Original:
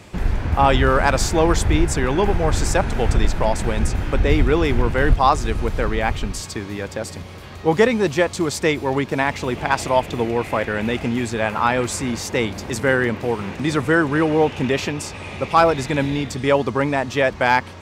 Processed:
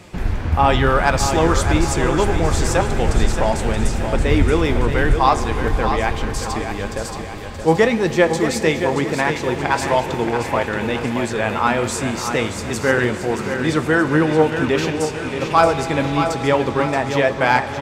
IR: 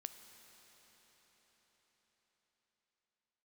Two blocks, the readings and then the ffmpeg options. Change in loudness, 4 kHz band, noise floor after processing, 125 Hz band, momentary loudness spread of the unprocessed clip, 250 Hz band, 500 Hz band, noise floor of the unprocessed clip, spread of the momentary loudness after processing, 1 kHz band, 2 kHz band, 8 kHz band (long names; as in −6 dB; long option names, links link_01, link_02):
+1.5 dB, +1.5 dB, −28 dBFS, +1.0 dB, 8 LU, +1.5 dB, +1.5 dB, −36 dBFS, 7 LU, +1.5 dB, +1.5 dB, +1.5 dB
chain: -filter_complex "[0:a]flanger=delay=5.5:depth=7.1:regen=66:speed=0.98:shape=sinusoidal,aecho=1:1:626|1252|1878|2504|3130:0.398|0.179|0.0806|0.0363|0.0163,asplit=2[link_01][link_02];[1:a]atrim=start_sample=2205[link_03];[link_02][link_03]afir=irnorm=-1:irlink=0,volume=11dB[link_04];[link_01][link_04]amix=inputs=2:normalize=0,volume=-5dB"